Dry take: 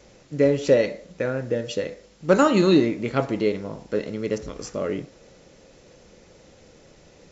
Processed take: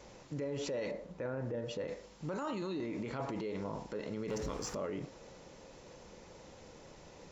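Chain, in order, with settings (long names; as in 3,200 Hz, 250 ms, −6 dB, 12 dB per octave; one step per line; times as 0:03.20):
0:00.91–0:01.88: high-shelf EQ 2,300 Hz −11 dB
0:04.28–0:04.75: leveller curve on the samples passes 2
brickwall limiter −28 dBFS, peak gain reduction 23 dB
parametric band 950 Hz +8.5 dB 0.53 octaves
level −3.5 dB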